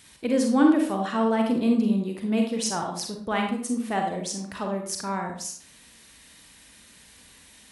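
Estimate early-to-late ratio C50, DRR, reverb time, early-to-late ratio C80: 4.0 dB, 2.0 dB, 0.55 s, 8.5 dB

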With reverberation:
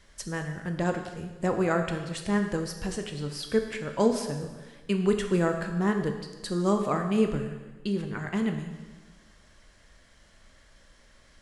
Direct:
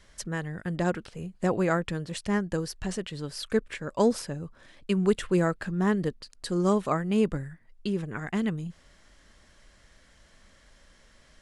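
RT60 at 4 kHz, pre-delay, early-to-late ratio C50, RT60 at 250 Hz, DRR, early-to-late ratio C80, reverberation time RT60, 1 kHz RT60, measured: 1.2 s, 7 ms, 7.0 dB, 1.3 s, 4.5 dB, 8.5 dB, 1.3 s, 1.3 s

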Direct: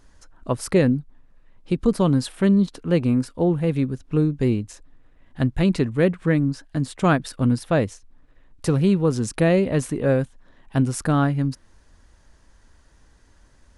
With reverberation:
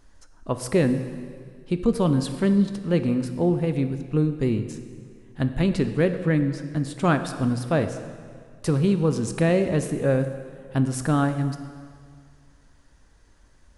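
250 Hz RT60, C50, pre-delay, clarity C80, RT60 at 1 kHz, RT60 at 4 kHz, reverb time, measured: 2.1 s, 9.5 dB, 10 ms, 11.0 dB, 2.0 s, 1.8 s, 2.0 s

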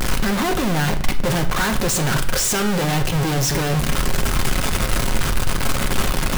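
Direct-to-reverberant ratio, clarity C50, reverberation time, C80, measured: 5.0 dB, 12.5 dB, 0.60 s, 15.0 dB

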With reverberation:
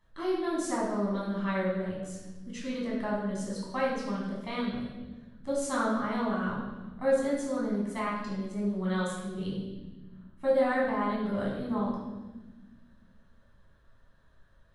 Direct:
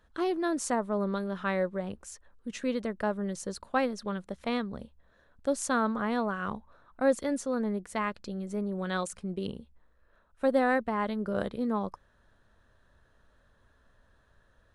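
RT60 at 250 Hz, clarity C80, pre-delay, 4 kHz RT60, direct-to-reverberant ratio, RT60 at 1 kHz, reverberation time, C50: 2.5 s, 4.5 dB, 11 ms, 1.2 s, -6.0 dB, 1.0 s, 1.2 s, 2.0 dB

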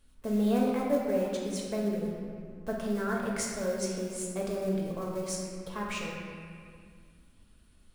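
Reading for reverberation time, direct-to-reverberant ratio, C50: 2.0 s, -3.5 dB, 0.5 dB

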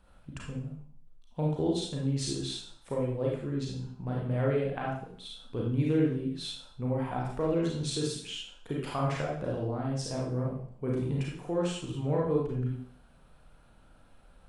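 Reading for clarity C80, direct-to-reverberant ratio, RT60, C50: 6.5 dB, -3.5 dB, 0.55 s, 1.0 dB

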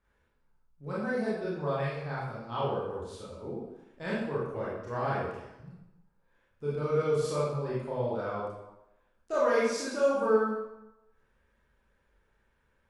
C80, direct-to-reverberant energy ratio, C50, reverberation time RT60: 2.5 dB, -8.0 dB, -0.5 dB, 0.95 s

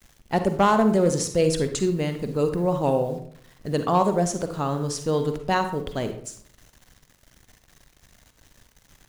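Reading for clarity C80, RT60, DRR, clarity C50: 12.5 dB, 0.55 s, 7.5 dB, 8.5 dB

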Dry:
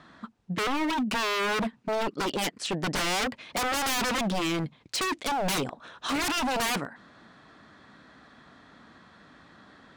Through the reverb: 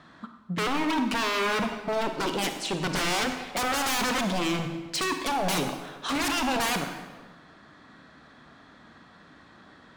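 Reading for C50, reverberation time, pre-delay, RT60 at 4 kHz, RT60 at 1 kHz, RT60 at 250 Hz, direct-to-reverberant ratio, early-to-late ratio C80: 6.5 dB, 1.3 s, 33 ms, 1.0 s, 1.3 s, 1.5 s, 5.5 dB, 8.5 dB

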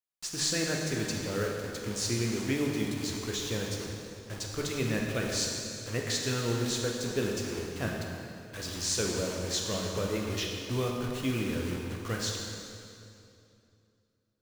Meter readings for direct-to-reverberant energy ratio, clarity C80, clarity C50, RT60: -0.5 dB, 2.5 dB, 1.5 dB, 2.7 s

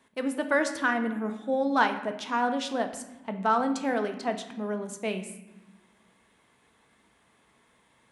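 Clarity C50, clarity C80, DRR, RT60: 9.5 dB, 12.0 dB, 6.0 dB, 1.1 s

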